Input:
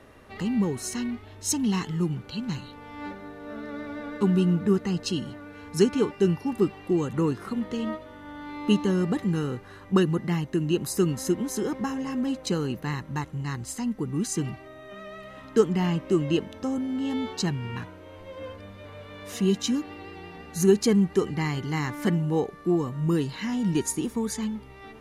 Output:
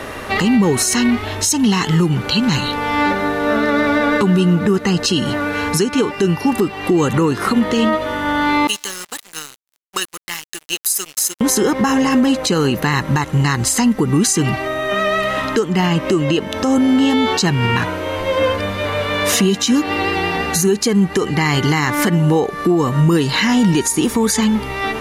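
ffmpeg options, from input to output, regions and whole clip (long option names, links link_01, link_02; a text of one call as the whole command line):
ffmpeg -i in.wav -filter_complex "[0:a]asettb=1/sr,asplit=3[link_01][link_02][link_03];[link_01]atrim=end=8.674[link_04];[link_02]atrim=start=8.67:end=11.41,asetpts=PTS-STARTPTS,afade=type=in:duration=0.004:curve=qsin,afade=type=out:start_time=2.736:duration=0.004:curve=qsin,aderivative,aeval=exprs='sgn(val(0))*max(abs(val(0))-0.00335,0)':channel_layout=same[link_05];[link_03]atrim=start=11.406[link_06];[link_04][link_05]acrossfade=duration=0.004:curve1=hsin:curve2=qsin[link_07];[link_07][link_06]acrossfade=duration=0.004:curve1=qsin:curve2=hsin,lowshelf=frequency=430:gain=-8,acompressor=threshold=-37dB:ratio=5,alimiter=level_in=32dB:limit=-1dB:release=50:level=0:latency=1,volume=-5.5dB" out.wav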